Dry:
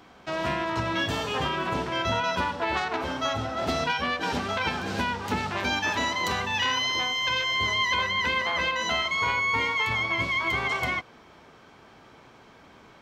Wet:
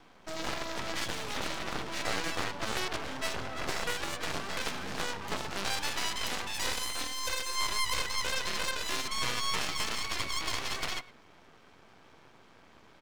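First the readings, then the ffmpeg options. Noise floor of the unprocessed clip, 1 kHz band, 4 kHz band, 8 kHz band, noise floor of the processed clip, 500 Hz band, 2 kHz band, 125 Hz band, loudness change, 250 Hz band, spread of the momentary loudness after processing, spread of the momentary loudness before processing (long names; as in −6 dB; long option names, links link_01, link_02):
−53 dBFS, −9.5 dB, −5.0 dB, +3.5 dB, −58 dBFS, −8.5 dB, −9.5 dB, −10.0 dB, −7.5 dB, −9.5 dB, 5 LU, 5 LU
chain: -af "aecho=1:1:108:0.0891,aeval=exprs='0.211*(cos(1*acos(clip(val(0)/0.211,-1,1)))-cos(1*PI/2))+0.0335*(cos(3*acos(clip(val(0)/0.211,-1,1)))-cos(3*PI/2))+0.0335*(cos(6*acos(clip(val(0)/0.211,-1,1)))-cos(6*PI/2))+0.0596*(cos(7*acos(clip(val(0)/0.211,-1,1)))-cos(7*PI/2))':channel_layout=same,aeval=exprs='max(val(0),0)':channel_layout=same,volume=-5.5dB"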